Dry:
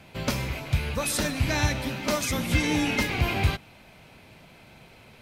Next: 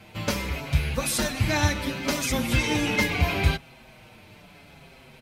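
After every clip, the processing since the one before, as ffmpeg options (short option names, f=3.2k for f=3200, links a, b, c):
-filter_complex "[0:a]asplit=2[a][b];[b]adelay=6.1,afreqshift=-0.73[c];[a][c]amix=inputs=2:normalize=1,volume=4.5dB"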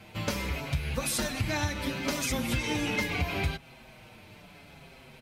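-af "acompressor=threshold=-25dB:ratio=4,volume=-1.5dB"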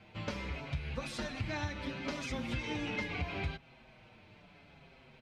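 -af "lowpass=4.2k,volume=-7dB"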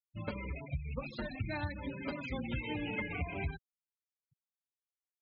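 -af "afftfilt=real='re*gte(hypot(re,im),0.0158)':imag='im*gte(hypot(re,im),0.0158)':win_size=1024:overlap=0.75"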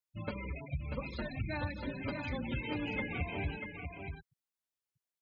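-af "aecho=1:1:640:0.501"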